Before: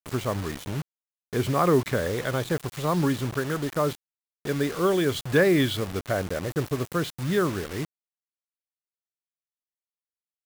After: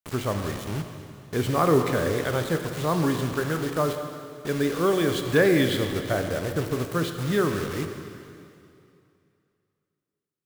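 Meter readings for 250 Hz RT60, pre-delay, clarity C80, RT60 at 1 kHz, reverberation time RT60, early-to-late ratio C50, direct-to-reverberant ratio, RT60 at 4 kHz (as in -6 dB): 2.7 s, 8 ms, 7.0 dB, 2.6 s, 2.6 s, 6.5 dB, 5.5 dB, 2.4 s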